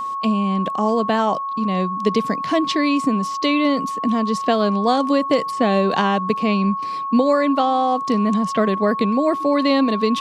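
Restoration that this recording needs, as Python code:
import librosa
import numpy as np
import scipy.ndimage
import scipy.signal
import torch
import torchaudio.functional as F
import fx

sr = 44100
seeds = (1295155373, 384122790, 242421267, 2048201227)

y = fx.notch(x, sr, hz=1100.0, q=30.0)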